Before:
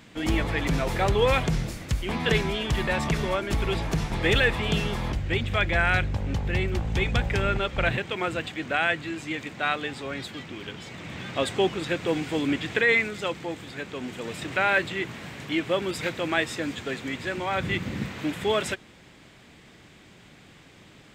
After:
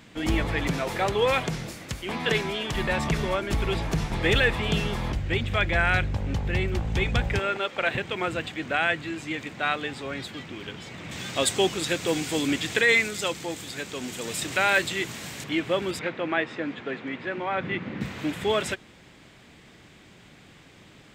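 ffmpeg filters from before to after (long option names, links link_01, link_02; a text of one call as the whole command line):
ffmpeg -i in.wav -filter_complex "[0:a]asettb=1/sr,asplit=3[link_01][link_02][link_03];[link_01]atrim=end=0.714[link_04];[link_02]atrim=start=0.71:end=2.75,asetpts=PTS-STARTPTS,afade=type=in:duration=0.004:curve=qsin,afade=type=out:start_time=2.036:duration=0.004:curve=qsin,highpass=frequency=230:poles=1[link_05];[link_03]atrim=start=2.746[link_06];[link_04][link_05]acrossfade=duration=0.004:curve1=hsin:curve2=qsin[link_07];[link_07][link_06]acrossfade=duration=0.004:curve1=qsin:curve2=hsin,asettb=1/sr,asplit=3[link_08][link_09][link_10];[link_08]atrim=end=7.394[link_11];[link_09]atrim=start=7.39:end=7.95,asetpts=PTS-STARTPTS,afade=type=in:duration=0.004:curve=qsin,afade=type=out:start_time=0.556:duration=0.004:curve=qsin,highpass=330[link_12];[link_10]atrim=start=7.946[link_13];[link_11][link_12]acrossfade=duration=0.004:curve1=hsin:curve2=qsin[link_14];[link_14][link_13]acrossfade=duration=0.004:curve1=qsin:curve2=hsin,asettb=1/sr,asplit=3[link_15][link_16][link_17];[link_15]atrim=end=11.114[link_18];[link_16]atrim=start=11.11:end=15.44,asetpts=PTS-STARTPTS,afade=type=in:duration=0.004:curve=qsin,afade=type=out:start_time=4.326:duration=0.004:curve=qsin,bass=frequency=250:gain=-1,treble=frequency=4000:gain=14[link_19];[link_17]atrim=start=15.436[link_20];[link_18][link_19]acrossfade=duration=0.004:curve1=hsin:curve2=qsin[link_21];[link_21][link_20]acrossfade=duration=0.004:curve1=qsin:curve2=hsin,asettb=1/sr,asplit=3[link_22][link_23][link_24];[link_22]atrim=end=15.994[link_25];[link_23]atrim=start=15.99:end=18.01,asetpts=PTS-STARTPTS,afade=type=in:duration=0.004:curve=qsin,afade=type=out:start_time=2.016:duration=0.004:curve=qsin,highpass=170,lowpass=2500[link_26];[link_24]atrim=start=18.006[link_27];[link_25][link_26]acrossfade=duration=0.004:curve1=hsin:curve2=qsin[link_28];[link_28][link_27]acrossfade=duration=0.004:curve1=qsin:curve2=hsin" out.wav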